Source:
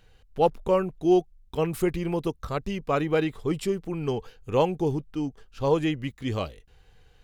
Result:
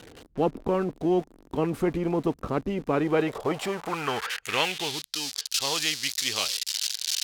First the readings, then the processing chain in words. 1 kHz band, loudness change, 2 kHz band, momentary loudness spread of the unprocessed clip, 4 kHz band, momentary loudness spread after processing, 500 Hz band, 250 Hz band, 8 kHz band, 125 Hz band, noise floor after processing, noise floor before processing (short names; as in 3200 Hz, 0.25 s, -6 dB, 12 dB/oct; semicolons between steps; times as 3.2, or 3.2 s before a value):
-1.0 dB, 0.0 dB, +6.5 dB, 10 LU, +13.5 dB, 5 LU, -3.0 dB, -1.5 dB, +17.0 dB, -4.0 dB, -58 dBFS, -59 dBFS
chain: switching spikes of -27.5 dBFS; band-pass sweep 290 Hz -> 4600 Hz, 2.89–5.1; spectral compressor 2:1; gain +6.5 dB